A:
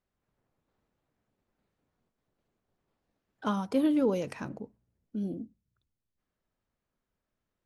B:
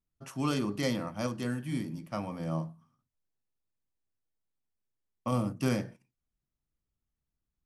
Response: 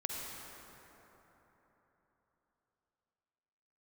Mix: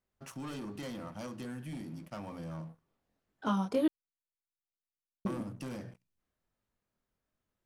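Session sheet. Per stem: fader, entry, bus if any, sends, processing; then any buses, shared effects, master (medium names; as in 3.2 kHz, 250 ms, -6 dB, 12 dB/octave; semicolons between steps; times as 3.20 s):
+1.5 dB, 0.00 s, muted 3.88–5.25 s, no send, chorus 1.5 Hz, delay 19.5 ms, depth 6.5 ms
-13.0 dB, 0.00 s, no send, hum notches 60/120/180 Hz; waveshaping leveller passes 3; compression, threshold -26 dBFS, peak gain reduction 6 dB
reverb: none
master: none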